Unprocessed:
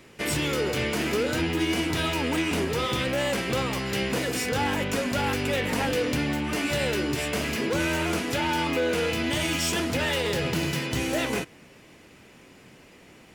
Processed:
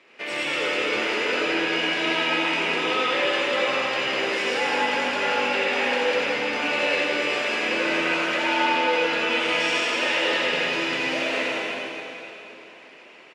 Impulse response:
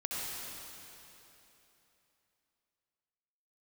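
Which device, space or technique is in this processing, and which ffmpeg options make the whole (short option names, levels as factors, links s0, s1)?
station announcement: -filter_complex "[0:a]highpass=460,lowpass=4000,equalizer=f=2500:t=o:w=0.49:g=4.5,aecho=1:1:84.55|253.6:0.355|0.282[s0];[1:a]atrim=start_sample=2205[s1];[s0][s1]afir=irnorm=-1:irlink=0"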